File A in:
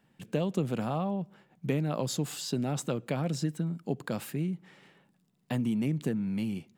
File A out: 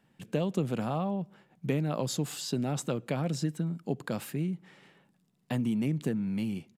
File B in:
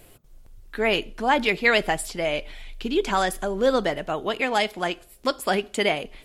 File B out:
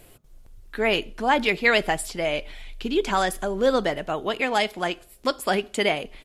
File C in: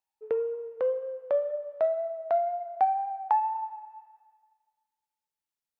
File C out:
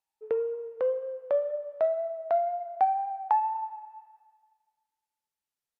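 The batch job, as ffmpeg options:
-af "aresample=32000,aresample=44100"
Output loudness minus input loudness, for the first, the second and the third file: 0.0 LU, 0.0 LU, 0.0 LU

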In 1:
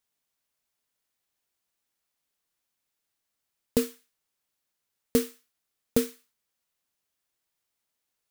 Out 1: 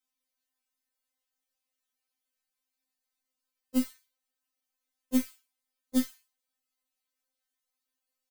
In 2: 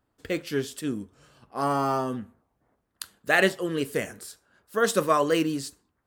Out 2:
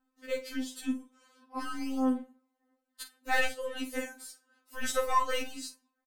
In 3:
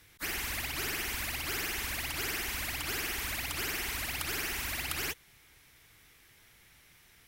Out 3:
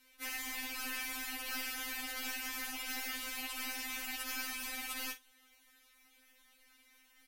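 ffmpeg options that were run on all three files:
-filter_complex "[0:a]aeval=exprs='(tanh(2.82*val(0)+0.6)-tanh(0.6))/2.82':c=same,asplit=2[s0][s1];[s1]adelay=46,volume=0.251[s2];[s0][s2]amix=inputs=2:normalize=0,afftfilt=real='re*3.46*eq(mod(b,12),0)':imag='im*3.46*eq(mod(b,12),0)':win_size=2048:overlap=0.75"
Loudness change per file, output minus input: -2.0 LU, -7.0 LU, -5.0 LU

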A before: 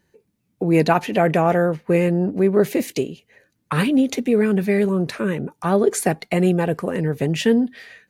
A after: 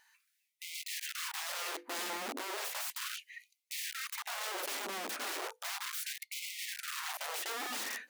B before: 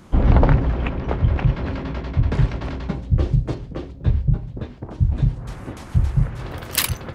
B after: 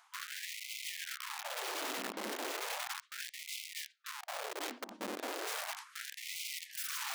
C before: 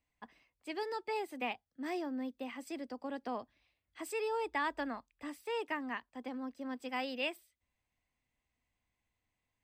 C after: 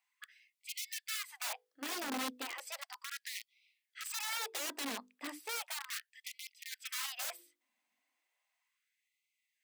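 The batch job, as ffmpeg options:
-af "equalizer=f=420:t=o:w=0.76:g=-9.5,bandreject=f=50:t=h:w=6,bandreject=f=100:t=h:w=6,bandreject=f=150:t=h:w=6,bandreject=f=200:t=h:w=6,bandreject=f=250:t=h:w=6,bandreject=f=300:t=h:w=6,bandreject=f=350:t=h:w=6,bandreject=f=400:t=h:w=6,bandreject=f=450:t=h:w=6,bandreject=f=500:t=h:w=6,areverse,acompressor=threshold=0.02:ratio=8,areverse,aeval=exprs='(mod(79.4*val(0)+1,2)-1)/79.4':c=same,afftfilt=real='re*gte(b*sr/1024,200*pow(2000/200,0.5+0.5*sin(2*PI*0.35*pts/sr)))':imag='im*gte(b*sr/1024,200*pow(2000/200,0.5+0.5*sin(2*PI*0.35*pts/sr)))':win_size=1024:overlap=0.75,volume=1.68"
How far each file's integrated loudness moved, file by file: -18.0 LU, -18.5 LU, -1.0 LU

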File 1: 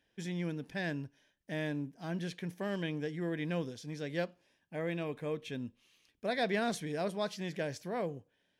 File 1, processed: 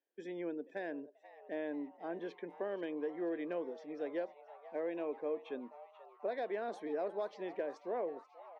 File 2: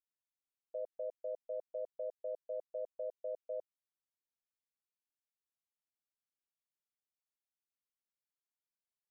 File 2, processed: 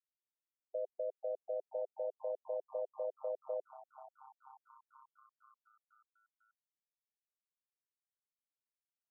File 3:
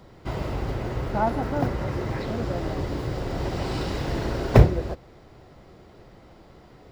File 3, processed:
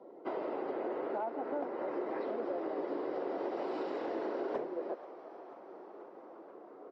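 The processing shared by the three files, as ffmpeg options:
-filter_complex "[0:a]afftdn=nr=14:nf=-51,highpass=f=310:w=0.5412,highpass=f=310:w=1.3066,acompressor=threshold=0.0158:ratio=6,asoftclip=type=hard:threshold=0.0282,bandpass=f=420:t=q:w=0.63:csg=0,asplit=7[s0][s1][s2][s3][s4][s5][s6];[s1]adelay=485,afreqshift=140,volume=0.133[s7];[s2]adelay=970,afreqshift=280,volume=0.0841[s8];[s3]adelay=1455,afreqshift=420,volume=0.0531[s9];[s4]adelay=1940,afreqshift=560,volume=0.0335[s10];[s5]adelay=2425,afreqshift=700,volume=0.0209[s11];[s6]adelay=2910,afreqshift=840,volume=0.0132[s12];[s0][s7][s8][s9][s10][s11][s12]amix=inputs=7:normalize=0,volume=1.5"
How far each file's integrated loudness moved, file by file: -3.5 LU, +2.0 LU, -11.5 LU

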